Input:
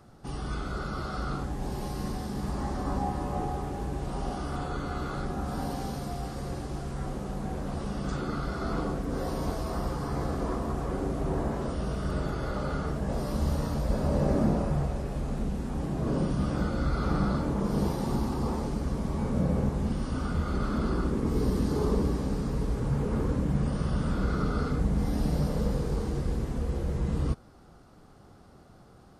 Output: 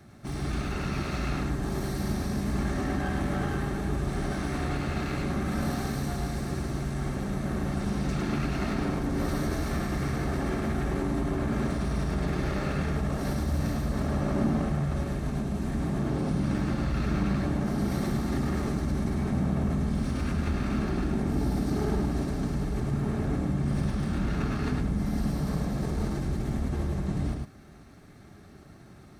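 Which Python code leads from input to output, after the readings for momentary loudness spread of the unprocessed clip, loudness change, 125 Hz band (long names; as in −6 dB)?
7 LU, +1.0 dB, +1.5 dB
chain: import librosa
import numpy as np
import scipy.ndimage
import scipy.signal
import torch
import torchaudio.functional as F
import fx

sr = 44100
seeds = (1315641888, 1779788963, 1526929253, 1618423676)

p1 = fx.lower_of_two(x, sr, delay_ms=0.5)
p2 = fx.over_compress(p1, sr, threshold_db=-32.0, ratio=-0.5)
p3 = p1 + F.gain(torch.from_numpy(p2), -3.0).numpy()
p4 = fx.notch_comb(p3, sr, f0_hz=490.0)
p5 = p4 + 10.0 ** (-4.0 / 20.0) * np.pad(p4, (int(105 * sr / 1000.0), 0))[:len(p4)]
y = F.gain(torch.from_numpy(p5), -2.0).numpy()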